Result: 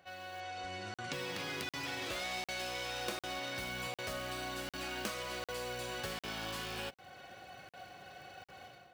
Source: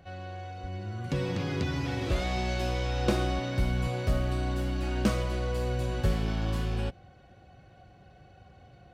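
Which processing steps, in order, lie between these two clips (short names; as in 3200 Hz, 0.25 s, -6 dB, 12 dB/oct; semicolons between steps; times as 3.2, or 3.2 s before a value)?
tracing distortion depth 0.11 ms; short-mantissa float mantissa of 4-bit; 0.4–1.13 LPF 8100 Hz 24 dB/oct; AGC gain up to 11 dB; HPF 1500 Hz 6 dB/oct; compressor 3:1, threshold -44 dBFS, peak gain reduction 17.5 dB; crackling interface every 0.75 s, samples 2048, zero, from 0.94; mismatched tape noise reduction decoder only; gain +2.5 dB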